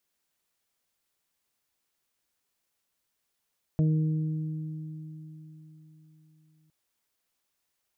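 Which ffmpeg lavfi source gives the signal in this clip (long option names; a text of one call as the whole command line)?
ffmpeg -f lavfi -i "aevalsrc='0.1*pow(10,-3*t/4.04)*sin(2*PI*156*t)+0.0282*pow(10,-3*t/3.98)*sin(2*PI*312*t)+0.0141*pow(10,-3*t/1.82)*sin(2*PI*468*t)+0.0133*pow(10,-3*t/0.26)*sin(2*PI*624*t)':duration=2.91:sample_rate=44100" out.wav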